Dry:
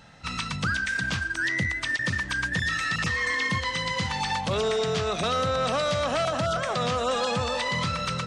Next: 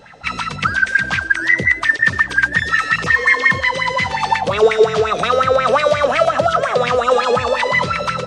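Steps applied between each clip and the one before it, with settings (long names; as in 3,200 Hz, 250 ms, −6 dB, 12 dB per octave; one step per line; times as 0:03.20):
auto-filter bell 5.6 Hz 400–2,300 Hz +18 dB
level +2.5 dB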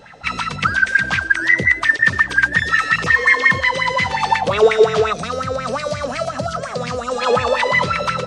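gain on a spectral selection 0:05.13–0:07.21, 290–4,000 Hz −9 dB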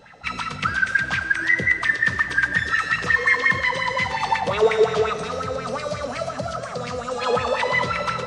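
dense smooth reverb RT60 3.2 s, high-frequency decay 0.8×, DRR 9 dB
level −5.5 dB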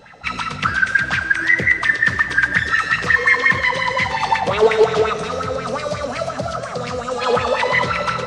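highs frequency-modulated by the lows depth 0.18 ms
level +4 dB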